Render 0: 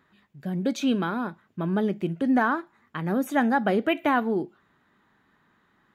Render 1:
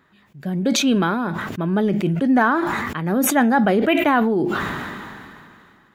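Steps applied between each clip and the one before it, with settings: sustainer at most 25 dB/s; gain +5 dB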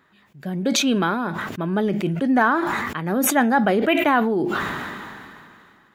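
low shelf 260 Hz -5 dB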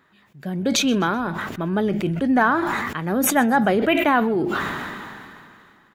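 frequency-shifting echo 0.127 s, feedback 43%, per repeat -77 Hz, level -22 dB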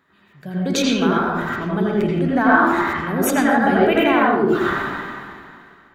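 reverb RT60 0.75 s, pre-delay 73 ms, DRR -5.5 dB; gain -3.5 dB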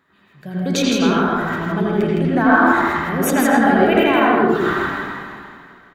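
echo 0.161 s -4 dB

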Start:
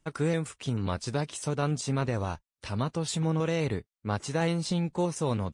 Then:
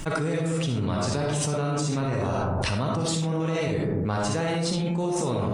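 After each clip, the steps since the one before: digital reverb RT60 0.78 s, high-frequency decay 0.35×, pre-delay 20 ms, DRR -1.5 dB; fast leveller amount 100%; gain -4.5 dB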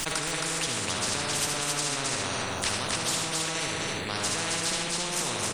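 on a send: loudspeakers at several distances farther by 26 m -12 dB, 92 m -6 dB; on the sum: spectral compressor 4:1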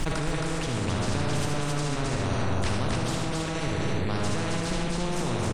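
tilt -3.5 dB/oct; doubler 34 ms -13 dB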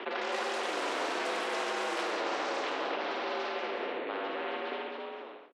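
ending faded out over 0.82 s; mistuned SSB +69 Hz 270–3300 Hz; echoes that change speed 0.107 s, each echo +6 st, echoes 3; gain -3.5 dB

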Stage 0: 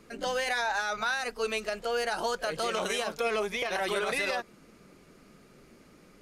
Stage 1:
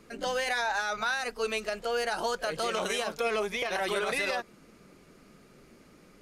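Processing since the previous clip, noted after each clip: nothing audible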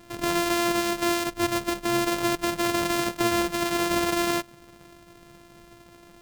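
sample sorter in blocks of 128 samples; gain +5.5 dB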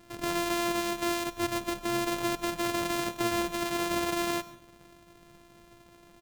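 echo 97 ms -21 dB; on a send at -17 dB: reverb RT60 0.30 s, pre-delay 0.119 s; on the sum: gain -5.5 dB

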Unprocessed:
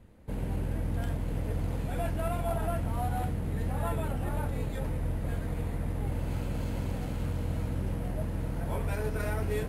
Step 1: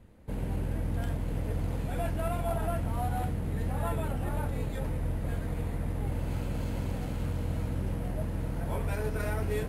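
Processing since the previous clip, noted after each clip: nothing audible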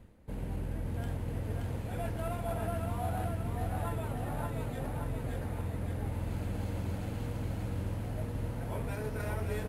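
feedback echo 0.575 s, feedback 57%, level -4 dB; reverse; upward compressor, threshold -38 dBFS; reverse; gain -4.5 dB

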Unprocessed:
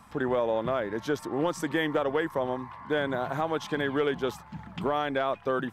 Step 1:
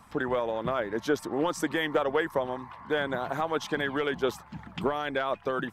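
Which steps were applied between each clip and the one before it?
harmonic-percussive split harmonic -8 dB; gain +3 dB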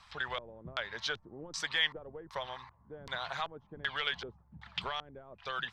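LFO low-pass square 1.3 Hz 310–4200 Hz; passive tone stack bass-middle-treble 10-0-10; gain +3 dB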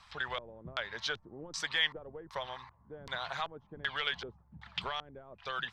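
nothing audible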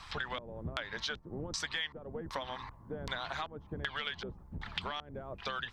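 octaver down 1 oct, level +1 dB; compressor 4:1, threshold -45 dBFS, peak gain reduction 17 dB; gain +8.5 dB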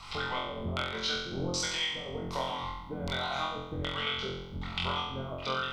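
Butterworth band-stop 1700 Hz, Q 4.5; flutter echo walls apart 3.9 m, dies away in 0.82 s; gain +1.5 dB

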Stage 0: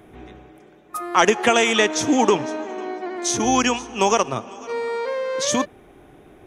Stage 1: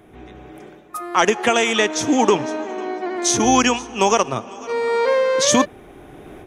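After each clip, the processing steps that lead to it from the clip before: AGC gain up to 12 dB; gain -1 dB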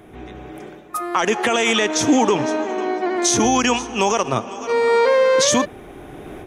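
limiter -11 dBFS, peak gain reduction 9 dB; gain +4 dB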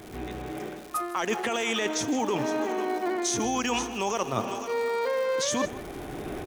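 reverse; compressor, threshold -25 dBFS, peak gain reduction 13.5 dB; reverse; crackle 270/s -35 dBFS; echo 0.158 s -17 dB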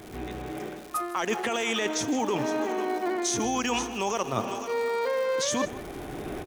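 ending taper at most 390 dB/s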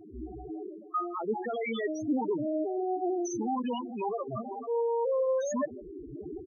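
loudest bins only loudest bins 4

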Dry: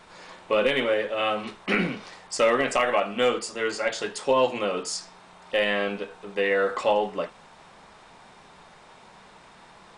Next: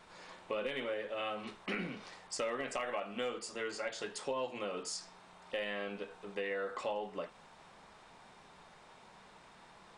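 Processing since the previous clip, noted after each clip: compressor 2.5:1, threshold -30 dBFS, peak gain reduction 9 dB; gain -7.5 dB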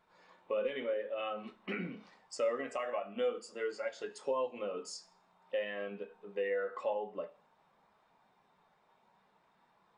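low shelf 68 Hz -6.5 dB; Schroeder reverb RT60 0.78 s, combs from 26 ms, DRR 13 dB; spectral expander 1.5:1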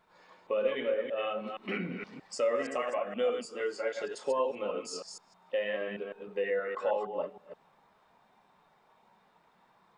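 reverse delay 0.157 s, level -5 dB; gain +3.5 dB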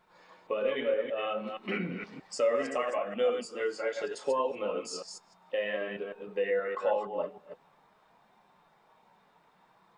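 flange 0.59 Hz, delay 5.5 ms, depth 1.6 ms, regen -65%; gain +5.5 dB

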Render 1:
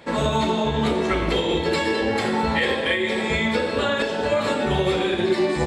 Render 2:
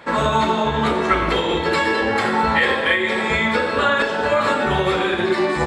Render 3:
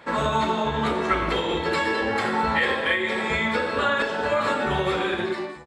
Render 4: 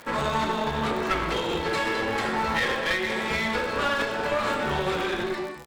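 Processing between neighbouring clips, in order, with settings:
bell 1300 Hz +10 dB 1.3 oct
ending faded out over 0.51 s; gain -5 dB
crackle 94/s -32 dBFS; one-sided clip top -29.5 dBFS

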